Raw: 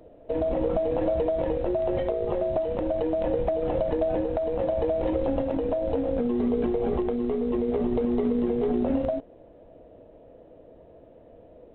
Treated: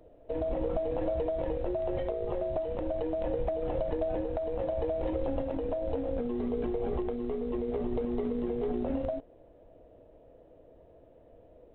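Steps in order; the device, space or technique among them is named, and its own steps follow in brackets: low shelf boost with a cut just above (low shelf 64 Hz +6 dB; bell 210 Hz -4 dB 0.62 oct); gain -6 dB

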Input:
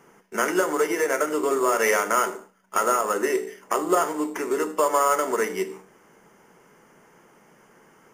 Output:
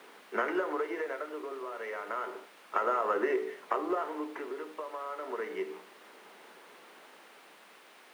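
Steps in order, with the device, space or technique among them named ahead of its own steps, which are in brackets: medium wave at night (BPF 140–4300 Hz; compressor, threshold -24 dBFS, peak gain reduction 8.5 dB; tremolo 0.31 Hz, depth 75%; whine 9000 Hz -53 dBFS; white noise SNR 12 dB); HPF 180 Hz 24 dB/oct; three-band isolator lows -14 dB, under 260 Hz, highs -14 dB, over 3400 Hz; high shelf 4600 Hz -8 dB

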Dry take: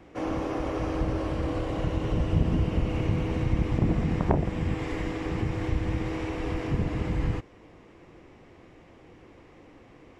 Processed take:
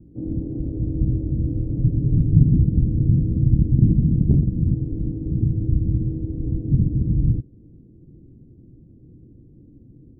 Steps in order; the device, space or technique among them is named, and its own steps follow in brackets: the neighbour's flat through the wall (LPF 280 Hz 24 dB/oct; bell 130 Hz +6 dB 0.41 oct); 1.77–2.55 comb 7.3 ms, depth 45%; gain +7.5 dB

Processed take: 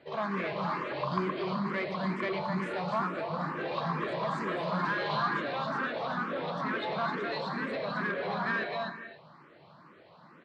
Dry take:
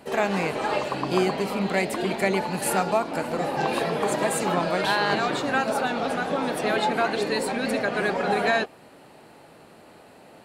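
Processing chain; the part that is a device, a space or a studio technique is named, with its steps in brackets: echo 0.258 s -4 dB; non-linear reverb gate 0.32 s flat, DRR 8 dB; barber-pole phaser into a guitar amplifier (endless phaser +2.2 Hz; soft clip -20.5 dBFS, distortion -15 dB; speaker cabinet 110–4200 Hz, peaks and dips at 150 Hz +8 dB, 270 Hz -5 dB, 430 Hz -5 dB, 780 Hz -7 dB, 1100 Hz +9 dB, 2700 Hz -6 dB); gain -4 dB

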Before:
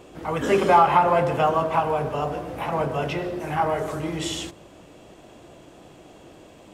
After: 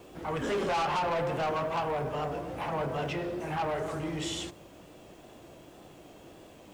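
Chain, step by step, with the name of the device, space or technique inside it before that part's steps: compact cassette (soft clip -22.5 dBFS, distortion -7 dB; LPF 9700 Hz 12 dB/oct; wow and flutter; white noise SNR 35 dB); gain -4 dB

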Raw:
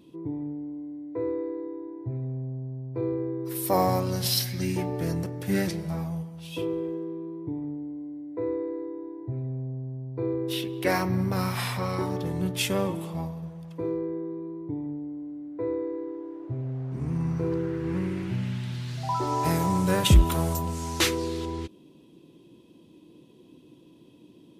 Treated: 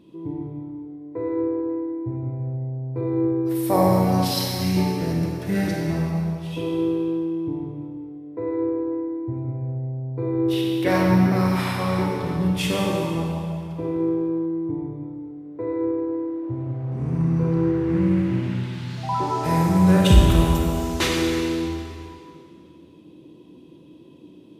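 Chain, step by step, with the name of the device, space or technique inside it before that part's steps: swimming-pool hall (reverb RT60 2.3 s, pre-delay 30 ms, DRR -1 dB; high shelf 4300 Hz -8 dB); gain +2 dB

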